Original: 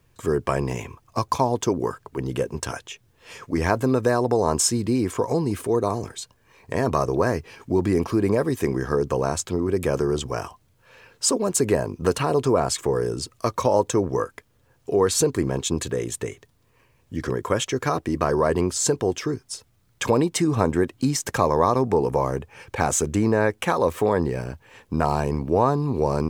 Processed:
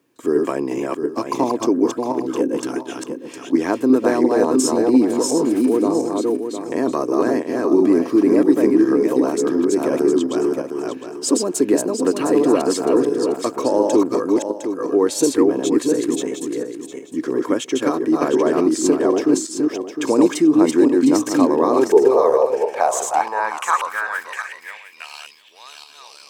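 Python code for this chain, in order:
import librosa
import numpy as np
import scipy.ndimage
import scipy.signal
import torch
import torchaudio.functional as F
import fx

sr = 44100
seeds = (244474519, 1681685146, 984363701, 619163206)

y = fx.reverse_delay_fb(x, sr, ms=354, feedback_pct=46, wet_db=-1.5)
y = fx.filter_sweep_highpass(y, sr, from_hz=290.0, to_hz=3200.0, start_s=21.6, end_s=25.36, q=4.5)
y = y * 10.0 ** (-2.5 / 20.0)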